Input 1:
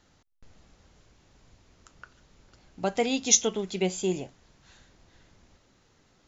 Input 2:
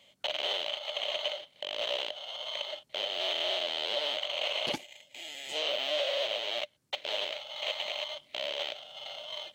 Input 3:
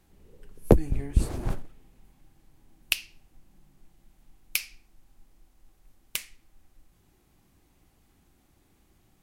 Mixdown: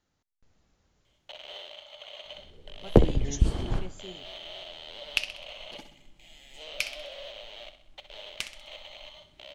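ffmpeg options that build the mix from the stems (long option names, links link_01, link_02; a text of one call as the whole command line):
ffmpeg -i stem1.wav -i stem2.wav -i stem3.wav -filter_complex "[0:a]dynaudnorm=framelen=130:gausssize=5:maxgain=3.5dB,volume=-14.5dB,afade=type=out:start_time=1.01:duration=0.72:silence=0.473151[link_01];[1:a]acontrast=33,adelay=1050,volume=-17dB,asplit=2[link_02][link_03];[link_03]volume=-10dB[link_04];[2:a]lowpass=5700,adelay=2250,volume=0dB,asplit=2[link_05][link_06];[link_06]volume=-12dB[link_07];[link_04][link_07]amix=inputs=2:normalize=0,aecho=0:1:64|128|192|256|320|384|448:1|0.5|0.25|0.125|0.0625|0.0312|0.0156[link_08];[link_01][link_02][link_05][link_08]amix=inputs=4:normalize=0" out.wav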